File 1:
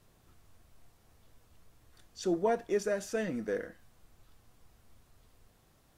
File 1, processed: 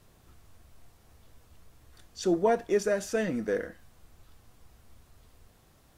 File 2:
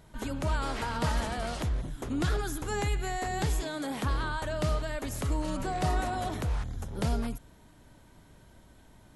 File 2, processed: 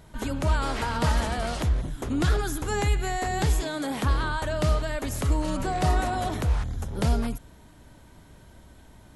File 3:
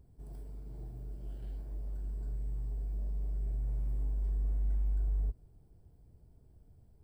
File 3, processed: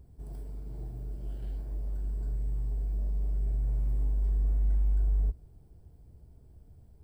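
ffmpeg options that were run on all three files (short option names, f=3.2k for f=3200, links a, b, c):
-af "equalizer=f=68:t=o:w=0.35:g=5,volume=4.5dB"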